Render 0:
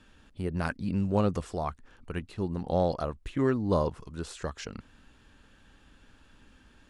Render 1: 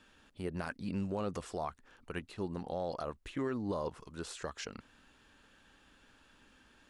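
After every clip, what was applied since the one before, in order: bass shelf 200 Hz -11 dB; peak limiter -25 dBFS, peak gain reduction 9.5 dB; trim -1.5 dB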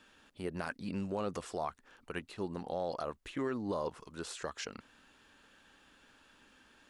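bass shelf 150 Hz -8 dB; trim +1.5 dB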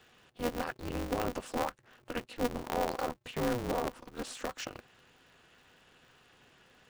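spectral gate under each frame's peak -30 dB strong; small resonant body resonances 370/640/2800 Hz, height 11 dB, ringing for 80 ms; polarity switched at an audio rate 120 Hz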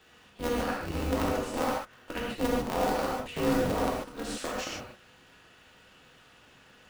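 gated-style reverb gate 170 ms flat, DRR -3.5 dB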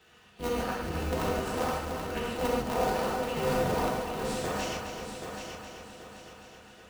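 comb of notches 280 Hz; on a send: multi-head delay 260 ms, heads first and third, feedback 55%, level -7.5 dB

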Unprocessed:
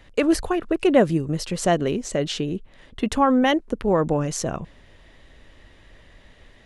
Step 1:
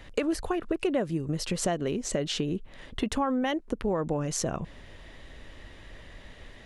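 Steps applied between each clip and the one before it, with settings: compression 4:1, threshold -30 dBFS, peak gain reduction 16 dB; trim +3 dB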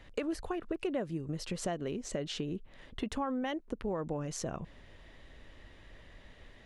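treble shelf 7.1 kHz -5.5 dB; trim -7 dB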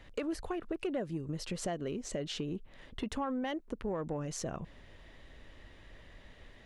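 saturation -24.5 dBFS, distortion -23 dB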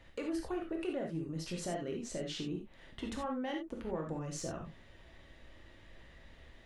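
reverberation, pre-delay 3 ms, DRR 0.5 dB; trim -4.5 dB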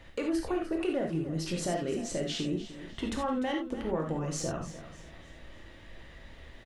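feedback delay 299 ms, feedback 37%, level -14 dB; trim +6.5 dB

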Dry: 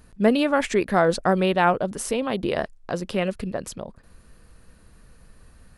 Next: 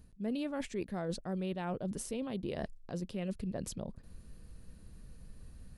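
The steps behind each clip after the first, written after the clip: FFT filter 180 Hz 0 dB, 1.3 kHz -13 dB, 3.9 kHz -6 dB; reverse; compression 5:1, threshold -35 dBFS, peak gain reduction 16 dB; reverse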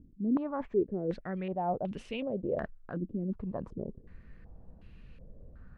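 step-sequenced low-pass 2.7 Hz 300–2700 Hz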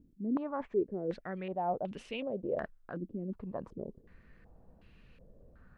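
bass shelf 220 Hz -9 dB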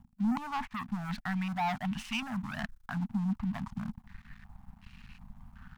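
waveshaping leveller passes 3; elliptic band-stop 230–810 Hz, stop band 50 dB

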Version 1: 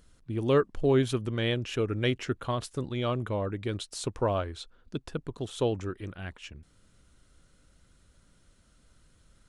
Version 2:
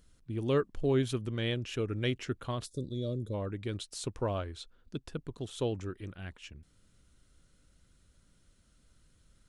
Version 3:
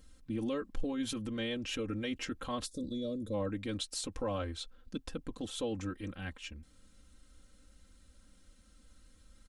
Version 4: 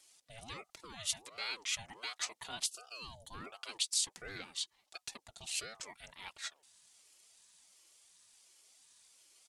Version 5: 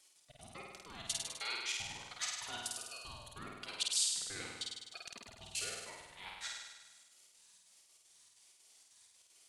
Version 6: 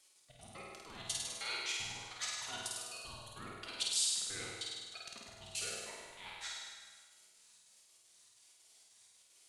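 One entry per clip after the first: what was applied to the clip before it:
time-frequency box 2.66–3.34 s, 620–3300 Hz -22 dB; peaking EQ 890 Hz -4 dB 2.2 oct; trim -3 dB
peak limiter -30 dBFS, peak gain reduction 11.5 dB; comb 3.8 ms, depth 89%; trim +1 dB
band-pass filter 7.2 kHz, Q 0.75; ring modulator with a swept carrier 670 Hz, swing 50%, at 1.4 Hz; trim +11 dB
trance gate "x.xx.x.xxx.xx.xx" 192 bpm -24 dB; on a send: flutter echo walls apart 8.7 m, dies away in 1.2 s; on the sum: trim -2 dB
plate-style reverb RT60 1.4 s, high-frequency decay 0.75×, DRR 2.5 dB; trim -1.5 dB

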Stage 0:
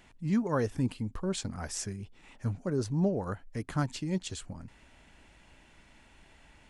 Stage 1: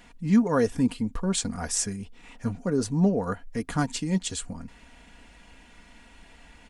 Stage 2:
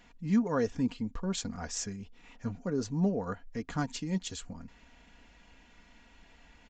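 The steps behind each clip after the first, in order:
dynamic bell 8.6 kHz, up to +6 dB, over -57 dBFS, Q 1.4; comb 4.2 ms, depth 53%; trim +5 dB
resampled via 16 kHz; trim -6.5 dB

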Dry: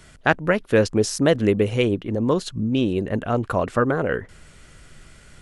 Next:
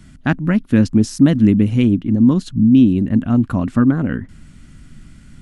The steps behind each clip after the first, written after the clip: resonant low shelf 340 Hz +9.5 dB, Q 3; trim -3 dB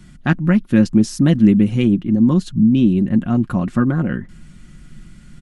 comb 5.6 ms, depth 50%; trim -1 dB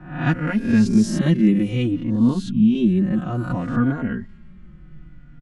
reverse spectral sustain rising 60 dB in 0.62 s; level-controlled noise filter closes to 1.5 kHz, open at -9.5 dBFS; endless flanger 3.5 ms -0.6 Hz; trim -2 dB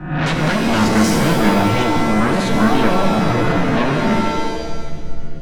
in parallel at -8 dB: sine folder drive 18 dB, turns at -5 dBFS; on the sum: pitch-shifted reverb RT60 1.3 s, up +7 st, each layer -2 dB, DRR 4.5 dB; trim -4.5 dB

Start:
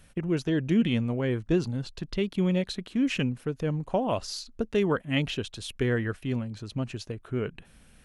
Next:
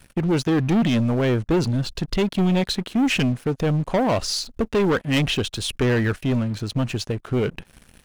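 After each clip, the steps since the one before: waveshaping leveller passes 3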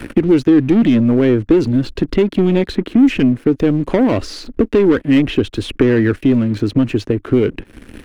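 FFT filter 100 Hz 0 dB, 160 Hz -6 dB, 300 Hz +9 dB, 740 Hz -7 dB, 2 kHz -2 dB, 6.2 kHz -12 dB; three bands compressed up and down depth 70%; trim +5 dB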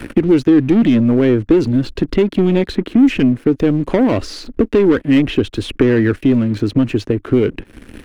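no audible change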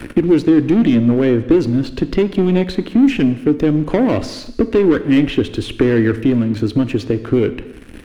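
gated-style reverb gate 380 ms falling, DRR 11.5 dB; trim -1 dB

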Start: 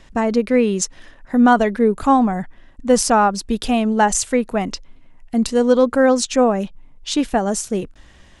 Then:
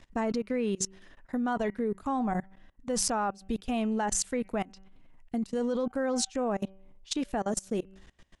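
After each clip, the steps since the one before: de-hum 192 Hz, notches 16; level held to a coarse grid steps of 23 dB; trim -5.5 dB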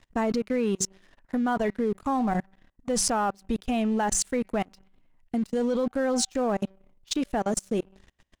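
waveshaping leveller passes 2; trim -3.5 dB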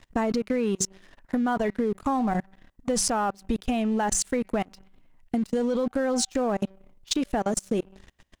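compression, threshold -27 dBFS, peak gain reduction 5.5 dB; trim +5 dB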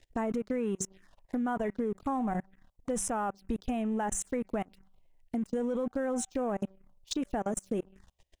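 touch-sensitive phaser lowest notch 180 Hz, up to 4.6 kHz, full sweep at -23 dBFS; trim -6 dB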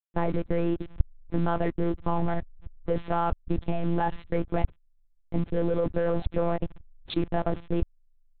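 send-on-delta sampling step -44 dBFS; monotone LPC vocoder at 8 kHz 170 Hz; trim +6.5 dB

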